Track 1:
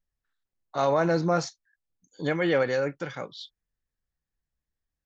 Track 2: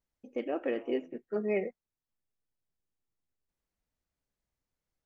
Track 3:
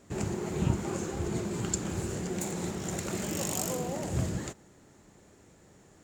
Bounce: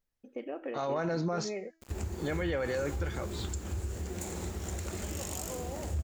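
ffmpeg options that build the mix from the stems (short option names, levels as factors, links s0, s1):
-filter_complex "[0:a]volume=0.668[s0];[1:a]volume=0.75[s1];[2:a]lowshelf=f=100:t=q:w=3:g=10,acrusher=bits=7:mix=0:aa=0.000001,adelay=1800,volume=1[s2];[s1][s2]amix=inputs=2:normalize=0,acompressor=threshold=0.0178:ratio=3,volume=1[s3];[s0][s3]amix=inputs=2:normalize=0,bandreject=f=325.2:t=h:w=4,bandreject=f=650.4:t=h:w=4,bandreject=f=975.6:t=h:w=4,bandreject=f=1300.8:t=h:w=4,bandreject=f=1626:t=h:w=4,bandreject=f=1951.2:t=h:w=4,bandreject=f=2276.4:t=h:w=4,bandreject=f=2601.6:t=h:w=4,bandreject=f=2926.8:t=h:w=4,bandreject=f=3252:t=h:w=4,bandreject=f=3577.2:t=h:w=4,bandreject=f=3902.4:t=h:w=4,bandreject=f=4227.6:t=h:w=4,bandreject=f=4552.8:t=h:w=4,bandreject=f=4878:t=h:w=4,bandreject=f=5203.2:t=h:w=4,bandreject=f=5528.4:t=h:w=4,bandreject=f=5853.6:t=h:w=4,bandreject=f=6178.8:t=h:w=4,bandreject=f=6504:t=h:w=4,bandreject=f=6829.2:t=h:w=4,bandreject=f=7154.4:t=h:w=4,bandreject=f=7479.6:t=h:w=4,bandreject=f=7804.8:t=h:w=4,bandreject=f=8130:t=h:w=4,bandreject=f=8455.2:t=h:w=4,bandreject=f=8780.4:t=h:w=4,bandreject=f=9105.6:t=h:w=4,bandreject=f=9430.8:t=h:w=4,bandreject=f=9756:t=h:w=4,bandreject=f=10081.2:t=h:w=4,bandreject=f=10406.4:t=h:w=4,alimiter=limit=0.0631:level=0:latency=1:release=16"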